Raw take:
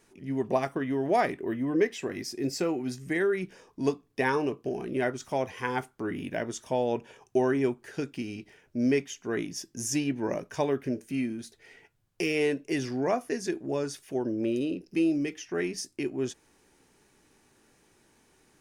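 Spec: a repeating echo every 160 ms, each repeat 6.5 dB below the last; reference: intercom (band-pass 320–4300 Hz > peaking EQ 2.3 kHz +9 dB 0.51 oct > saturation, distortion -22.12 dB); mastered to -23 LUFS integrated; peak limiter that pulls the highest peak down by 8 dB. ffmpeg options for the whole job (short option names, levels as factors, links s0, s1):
-af "alimiter=limit=0.0944:level=0:latency=1,highpass=320,lowpass=4300,equalizer=f=2300:t=o:w=0.51:g=9,aecho=1:1:160|320|480|640|800|960:0.473|0.222|0.105|0.0491|0.0231|0.0109,asoftclip=threshold=0.1,volume=3.16"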